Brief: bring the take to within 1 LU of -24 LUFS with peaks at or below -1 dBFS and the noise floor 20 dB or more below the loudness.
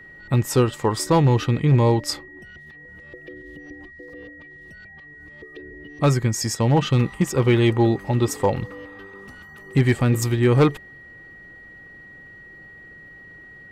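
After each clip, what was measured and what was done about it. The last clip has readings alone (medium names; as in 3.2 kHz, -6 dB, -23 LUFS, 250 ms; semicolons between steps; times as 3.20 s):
clipped samples 0.7%; clipping level -9.5 dBFS; steady tone 1.9 kHz; tone level -42 dBFS; loudness -20.5 LUFS; peak level -9.5 dBFS; loudness target -24.0 LUFS
-> clip repair -9.5 dBFS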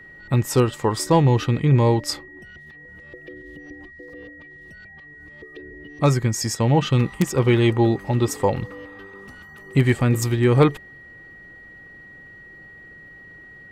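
clipped samples 0.0%; steady tone 1.9 kHz; tone level -42 dBFS
-> band-stop 1.9 kHz, Q 30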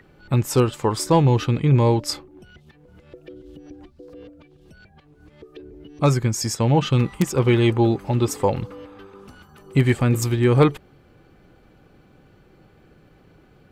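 steady tone not found; loudness -20.0 LUFS; peak level -2.5 dBFS; loudness target -24.0 LUFS
-> trim -4 dB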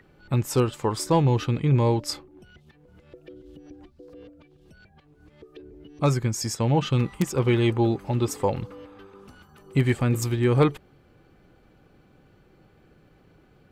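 loudness -24.0 LUFS; peak level -6.5 dBFS; noise floor -58 dBFS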